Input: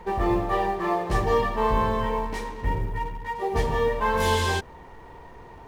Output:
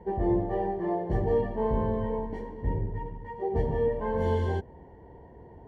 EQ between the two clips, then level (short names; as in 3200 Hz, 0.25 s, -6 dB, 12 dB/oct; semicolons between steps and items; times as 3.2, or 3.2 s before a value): running mean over 35 samples; HPF 50 Hz; 0.0 dB